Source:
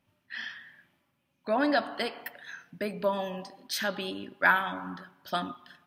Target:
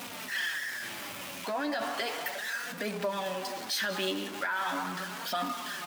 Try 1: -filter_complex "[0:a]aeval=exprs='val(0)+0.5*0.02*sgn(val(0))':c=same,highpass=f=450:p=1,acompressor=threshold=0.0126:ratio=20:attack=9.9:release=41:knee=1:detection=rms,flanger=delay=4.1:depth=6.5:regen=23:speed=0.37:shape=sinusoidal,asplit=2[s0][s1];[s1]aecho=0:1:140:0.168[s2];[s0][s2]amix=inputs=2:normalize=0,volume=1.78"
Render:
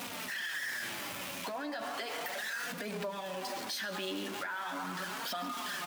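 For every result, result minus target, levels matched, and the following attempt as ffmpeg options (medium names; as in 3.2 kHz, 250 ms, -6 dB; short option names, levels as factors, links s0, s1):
compression: peak gain reduction +6.5 dB; echo 48 ms early
-filter_complex "[0:a]aeval=exprs='val(0)+0.5*0.02*sgn(val(0))':c=same,highpass=f=450:p=1,acompressor=threshold=0.0282:ratio=20:attack=9.9:release=41:knee=1:detection=rms,flanger=delay=4.1:depth=6.5:regen=23:speed=0.37:shape=sinusoidal,asplit=2[s0][s1];[s1]aecho=0:1:140:0.168[s2];[s0][s2]amix=inputs=2:normalize=0,volume=1.78"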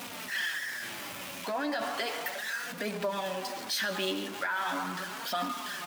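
echo 48 ms early
-filter_complex "[0:a]aeval=exprs='val(0)+0.5*0.02*sgn(val(0))':c=same,highpass=f=450:p=1,acompressor=threshold=0.0282:ratio=20:attack=9.9:release=41:knee=1:detection=rms,flanger=delay=4.1:depth=6.5:regen=23:speed=0.37:shape=sinusoidal,asplit=2[s0][s1];[s1]aecho=0:1:188:0.168[s2];[s0][s2]amix=inputs=2:normalize=0,volume=1.78"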